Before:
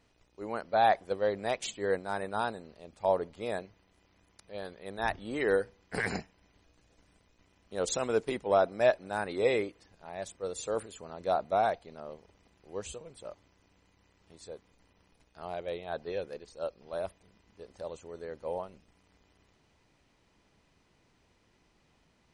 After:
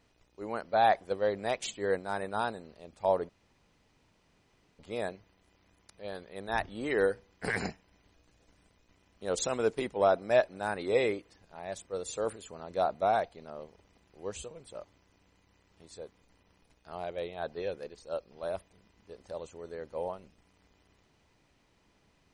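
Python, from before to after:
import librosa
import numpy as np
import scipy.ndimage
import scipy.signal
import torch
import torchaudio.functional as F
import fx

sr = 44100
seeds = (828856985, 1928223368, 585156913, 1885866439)

y = fx.edit(x, sr, fx.insert_room_tone(at_s=3.29, length_s=1.5), tone=tone)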